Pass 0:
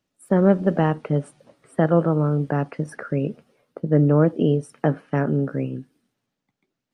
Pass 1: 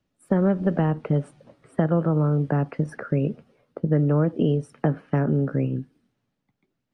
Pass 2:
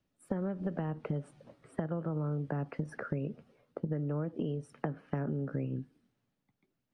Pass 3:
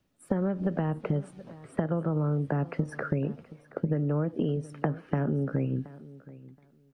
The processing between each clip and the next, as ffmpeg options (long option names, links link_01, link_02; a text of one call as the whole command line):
ffmpeg -i in.wav -filter_complex "[0:a]lowshelf=frequency=160:gain=9,acrossover=split=420|920[link_01][link_02][link_03];[link_01]acompressor=threshold=-20dB:ratio=4[link_04];[link_02]acompressor=threshold=-28dB:ratio=4[link_05];[link_03]acompressor=threshold=-34dB:ratio=4[link_06];[link_04][link_05][link_06]amix=inputs=3:normalize=0,highshelf=frequency=6600:gain=-11.5" out.wav
ffmpeg -i in.wav -af "acompressor=threshold=-27dB:ratio=6,volume=-4.5dB" out.wav
ffmpeg -i in.wav -af "aecho=1:1:724|1448:0.112|0.0202,volume=6.5dB" out.wav